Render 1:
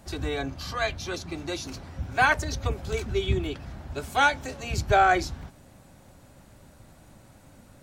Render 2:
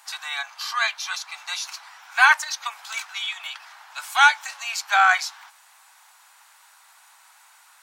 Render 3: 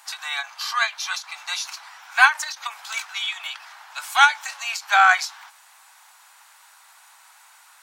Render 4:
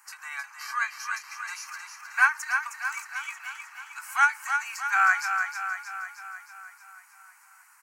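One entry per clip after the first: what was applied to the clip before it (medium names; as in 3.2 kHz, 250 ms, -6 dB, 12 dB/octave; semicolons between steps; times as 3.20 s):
steep high-pass 860 Hz 48 dB/octave; trim +7.5 dB
endings held to a fixed fall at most 240 dB/s; trim +2 dB
static phaser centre 1.5 kHz, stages 4; on a send: feedback delay 313 ms, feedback 59%, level -6.5 dB; on the sum: trim -5 dB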